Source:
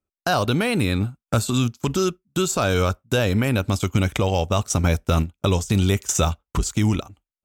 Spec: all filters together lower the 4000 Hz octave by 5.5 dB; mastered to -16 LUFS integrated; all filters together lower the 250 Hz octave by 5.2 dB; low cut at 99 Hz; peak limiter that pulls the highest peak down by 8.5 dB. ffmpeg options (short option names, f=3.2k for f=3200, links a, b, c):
-af "highpass=99,equalizer=f=250:t=o:g=-7,equalizer=f=4k:t=o:g=-7,volume=12dB,alimiter=limit=-3.5dB:level=0:latency=1"